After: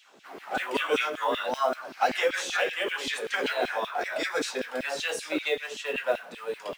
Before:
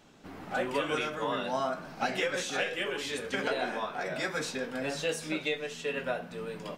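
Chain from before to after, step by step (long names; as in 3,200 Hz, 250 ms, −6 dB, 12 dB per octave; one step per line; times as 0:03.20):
noise that follows the level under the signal 28 dB
auto-filter high-pass saw down 5.2 Hz 260–3,300 Hz
level +2 dB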